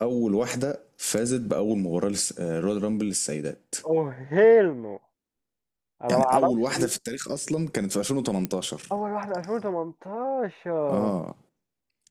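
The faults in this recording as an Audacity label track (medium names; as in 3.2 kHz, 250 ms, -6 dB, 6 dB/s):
8.450000	8.450000	pop -13 dBFS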